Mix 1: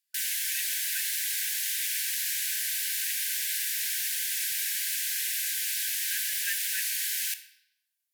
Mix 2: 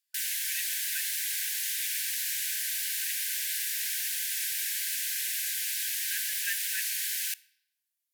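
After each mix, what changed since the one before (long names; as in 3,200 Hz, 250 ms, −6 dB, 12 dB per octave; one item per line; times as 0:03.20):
background: send −11.5 dB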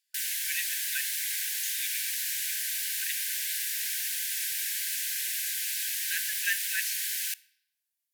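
speech +5.5 dB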